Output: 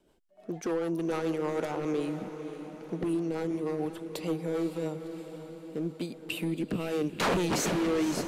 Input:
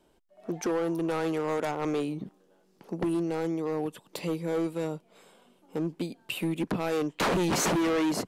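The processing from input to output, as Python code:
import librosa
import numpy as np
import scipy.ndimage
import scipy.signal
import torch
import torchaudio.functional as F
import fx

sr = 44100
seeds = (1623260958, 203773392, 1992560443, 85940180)

y = fx.rotary_switch(x, sr, hz=6.7, then_hz=0.85, switch_at_s=5.06)
y = fx.echo_diffused(y, sr, ms=521, feedback_pct=57, wet_db=-10.0)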